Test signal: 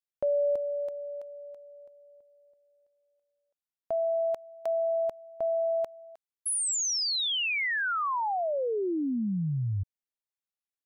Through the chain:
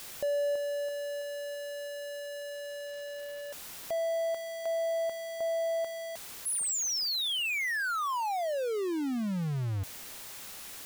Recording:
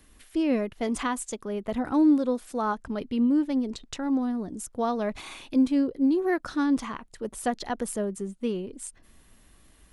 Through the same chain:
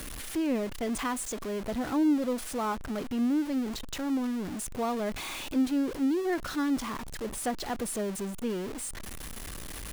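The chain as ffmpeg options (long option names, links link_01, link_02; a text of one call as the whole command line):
ffmpeg -i in.wav -af "aeval=exprs='val(0)+0.5*0.0398*sgn(val(0))':channel_layout=same,volume=-6dB" out.wav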